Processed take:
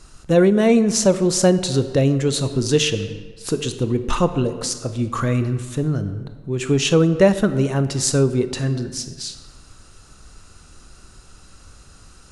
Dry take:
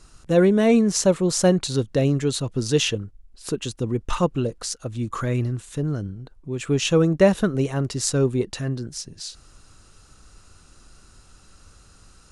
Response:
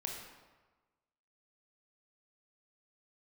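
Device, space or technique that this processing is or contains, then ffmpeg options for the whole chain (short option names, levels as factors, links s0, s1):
compressed reverb return: -filter_complex "[0:a]asplit=2[s0][s1];[1:a]atrim=start_sample=2205[s2];[s1][s2]afir=irnorm=-1:irlink=0,acompressor=threshold=0.0891:ratio=6,volume=0.891[s3];[s0][s3]amix=inputs=2:normalize=0"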